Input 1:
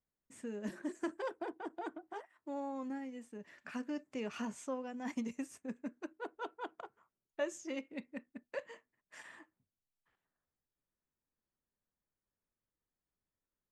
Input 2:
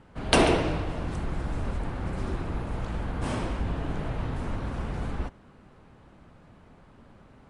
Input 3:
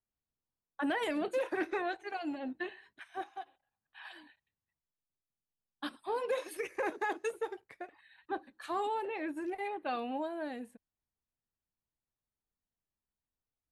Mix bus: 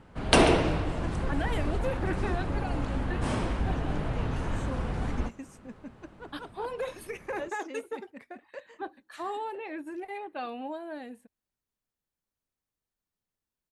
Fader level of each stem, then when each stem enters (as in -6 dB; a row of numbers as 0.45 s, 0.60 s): -2.0 dB, +0.5 dB, -0.5 dB; 0.00 s, 0.00 s, 0.50 s